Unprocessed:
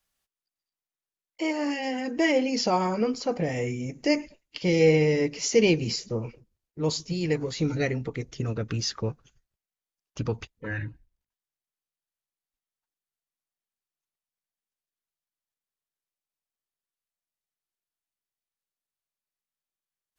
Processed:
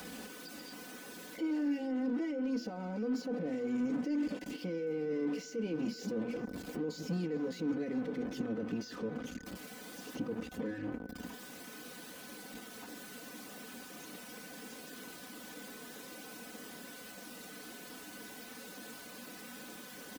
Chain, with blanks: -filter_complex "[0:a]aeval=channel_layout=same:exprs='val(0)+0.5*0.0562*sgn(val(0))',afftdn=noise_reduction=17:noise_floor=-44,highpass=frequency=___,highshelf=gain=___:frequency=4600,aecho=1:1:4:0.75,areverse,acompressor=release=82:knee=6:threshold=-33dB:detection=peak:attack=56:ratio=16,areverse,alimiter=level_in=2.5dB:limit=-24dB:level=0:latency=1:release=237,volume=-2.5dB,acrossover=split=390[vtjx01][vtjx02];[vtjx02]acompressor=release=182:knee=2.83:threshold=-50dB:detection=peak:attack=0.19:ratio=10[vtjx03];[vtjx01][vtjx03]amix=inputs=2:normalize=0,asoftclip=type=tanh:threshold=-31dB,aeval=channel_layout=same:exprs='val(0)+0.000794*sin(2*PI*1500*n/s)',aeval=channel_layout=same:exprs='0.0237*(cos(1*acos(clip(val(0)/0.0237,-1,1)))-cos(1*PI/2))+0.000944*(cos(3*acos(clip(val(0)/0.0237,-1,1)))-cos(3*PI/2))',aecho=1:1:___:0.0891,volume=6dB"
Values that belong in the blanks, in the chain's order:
270, -6.5, 406